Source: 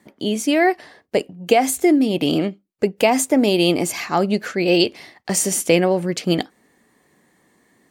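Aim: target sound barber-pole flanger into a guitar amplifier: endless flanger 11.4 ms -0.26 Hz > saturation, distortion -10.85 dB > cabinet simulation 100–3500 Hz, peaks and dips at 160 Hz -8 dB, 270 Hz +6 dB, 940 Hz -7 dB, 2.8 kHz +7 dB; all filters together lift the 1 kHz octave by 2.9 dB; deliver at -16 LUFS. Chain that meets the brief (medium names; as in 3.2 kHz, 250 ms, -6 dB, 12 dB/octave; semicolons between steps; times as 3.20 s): peaking EQ 1 kHz +8 dB; endless flanger 11.4 ms -0.26 Hz; saturation -16 dBFS; cabinet simulation 100–3500 Hz, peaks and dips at 160 Hz -8 dB, 270 Hz +6 dB, 940 Hz -7 dB, 2.8 kHz +7 dB; trim +7.5 dB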